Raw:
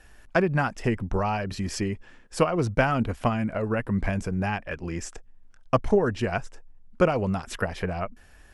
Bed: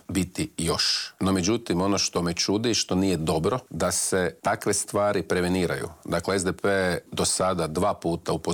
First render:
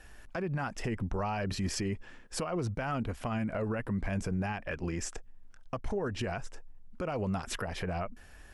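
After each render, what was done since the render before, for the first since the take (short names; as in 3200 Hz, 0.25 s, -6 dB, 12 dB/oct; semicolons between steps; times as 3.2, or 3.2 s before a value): compressor, threshold -26 dBFS, peak gain reduction 11.5 dB; limiter -25 dBFS, peak gain reduction 11 dB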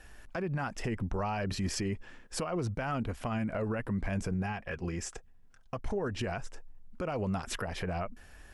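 4.34–5.79 notch comb 300 Hz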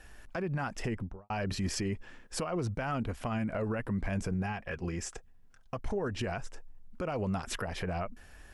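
0.86–1.3 studio fade out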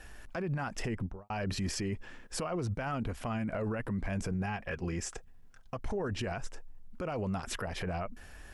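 in parallel at -2.5 dB: level quantiser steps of 19 dB; on the sum: limiter -27 dBFS, peak gain reduction 6 dB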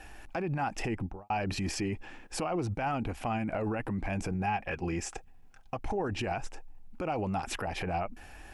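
thirty-one-band EQ 315 Hz +7 dB, 800 Hz +11 dB, 2500 Hz +7 dB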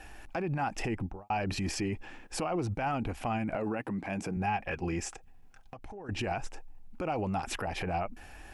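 3.55–4.37 Chebyshev high-pass 170 Hz; 5.12–6.09 compressor, threshold -42 dBFS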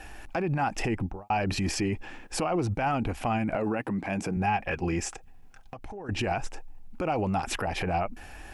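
gain +4.5 dB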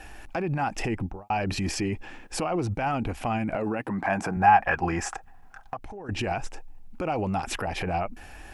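3.9–5.77 band shelf 1100 Hz +10.5 dB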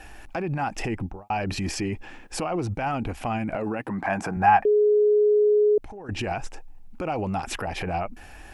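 4.65–5.78 bleep 419 Hz -15.5 dBFS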